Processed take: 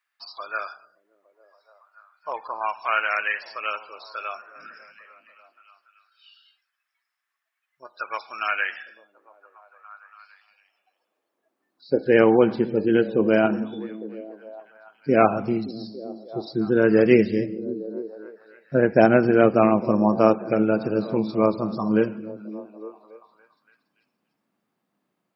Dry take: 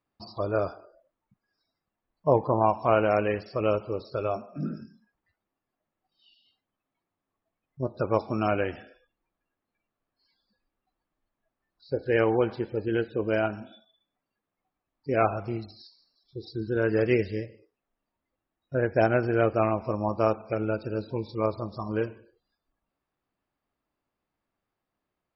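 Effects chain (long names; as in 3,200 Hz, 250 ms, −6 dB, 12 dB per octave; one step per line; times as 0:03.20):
echo through a band-pass that steps 285 ms, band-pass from 160 Hz, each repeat 0.7 octaves, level −10 dB
high-pass filter sweep 1,700 Hz → 190 Hz, 0:09.70–0:12.14
level +5.5 dB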